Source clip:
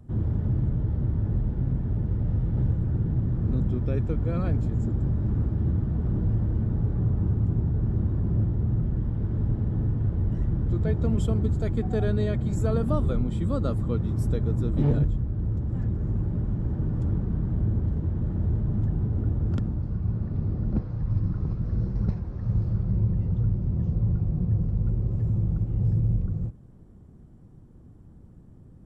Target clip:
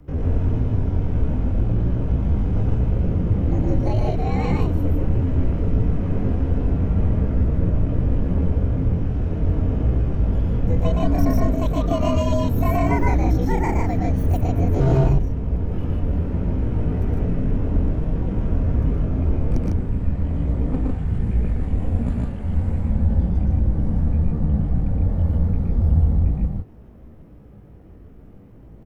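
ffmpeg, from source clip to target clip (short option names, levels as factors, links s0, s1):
-af "afreqshift=-66,asetrate=78577,aresample=44100,atempo=0.561231,aecho=1:1:116.6|151.6:0.708|0.794,volume=1.41"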